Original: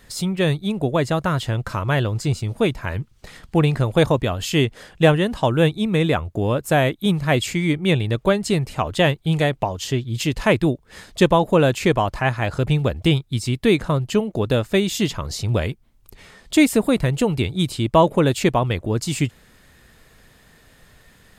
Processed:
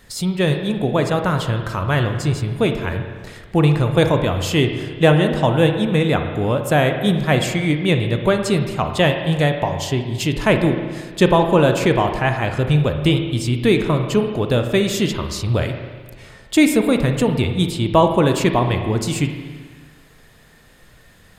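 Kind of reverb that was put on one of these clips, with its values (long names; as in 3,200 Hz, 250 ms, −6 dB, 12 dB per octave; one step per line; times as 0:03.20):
spring reverb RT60 1.6 s, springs 33/54 ms, chirp 25 ms, DRR 5.5 dB
level +1 dB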